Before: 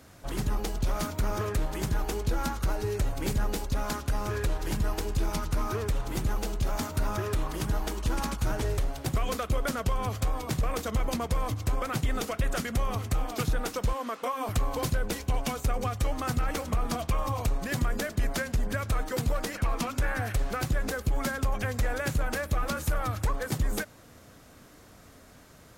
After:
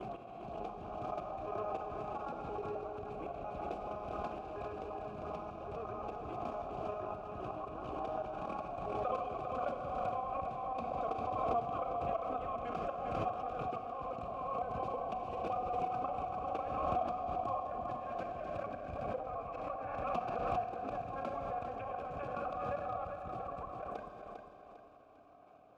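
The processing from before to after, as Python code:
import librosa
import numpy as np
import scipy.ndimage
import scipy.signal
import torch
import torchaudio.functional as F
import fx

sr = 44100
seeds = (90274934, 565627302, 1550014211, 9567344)

y = fx.block_reorder(x, sr, ms=86.0, group=5)
y = scipy.signal.sosfilt(scipy.signal.butter(2, 55.0, 'highpass', fs=sr, output='sos'), y)
y = fx.tilt_eq(y, sr, slope=-3.5)
y = fx.hum_notches(y, sr, base_hz=50, count=5)
y = fx.level_steps(y, sr, step_db=13)
y = fx.transient(y, sr, attack_db=-2, sustain_db=-6)
y = fx.vowel_filter(y, sr, vowel='a')
y = fx.echo_feedback(y, sr, ms=400, feedback_pct=38, wet_db=-7)
y = fx.rev_schroeder(y, sr, rt60_s=2.1, comb_ms=31, drr_db=5.5)
y = fx.pre_swell(y, sr, db_per_s=26.0)
y = F.gain(torch.from_numpy(y), 6.0).numpy()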